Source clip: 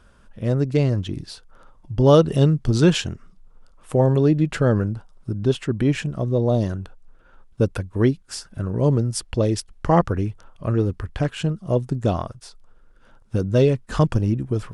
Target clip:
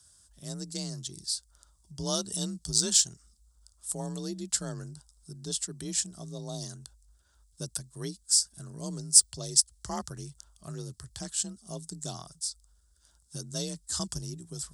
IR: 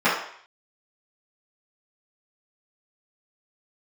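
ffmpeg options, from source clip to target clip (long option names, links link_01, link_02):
-af "aexciter=amount=10.8:drive=7.5:freq=3800,afreqshift=37,equalizer=frequency=250:width_type=o:width=0.33:gain=-10,equalizer=frequency=500:width_type=o:width=0.33:gain=-11,equalizer=frequency=5000:width_type=o:width=0.33:gain=3,equalizer=frequency=8000:width_type=o:width=0.33:gain=8,volume=-17dB"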